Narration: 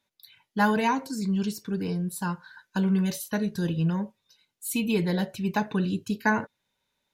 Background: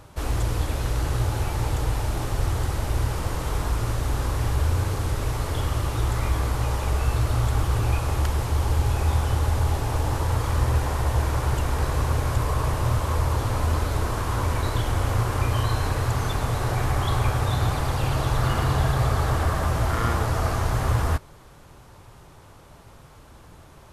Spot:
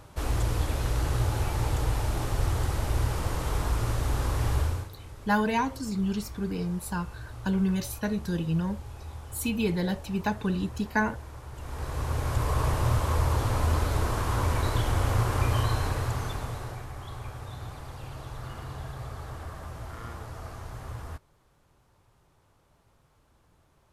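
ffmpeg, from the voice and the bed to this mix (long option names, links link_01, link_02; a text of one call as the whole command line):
ffmpeg -i stem1.wav -i stem2.wav -filter_complex "[0:a]adelay=4700,volume=-2dB[link_01];[1:a]volume=14.5dB,afade=type=out:start_time=4.57:duration=0.32:silence=0.149624,afade=type=in:start_time=11.53:duration=1.08:silence=0.141254,afade=type=out:start_time=15.55:duration=1.31:silence=0.188365[link_02];[link_01][link_02]amix=inputs=2:normalize=0" out.wav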